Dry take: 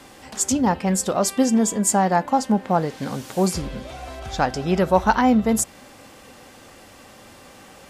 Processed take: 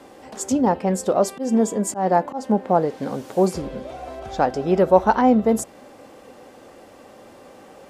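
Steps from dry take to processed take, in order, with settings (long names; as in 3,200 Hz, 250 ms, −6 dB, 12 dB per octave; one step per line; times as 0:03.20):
parametric band 470 Hz +13 dB 2.5 octaves
0:01.05–0:02.58: volume swells 140 ms
level −8 dB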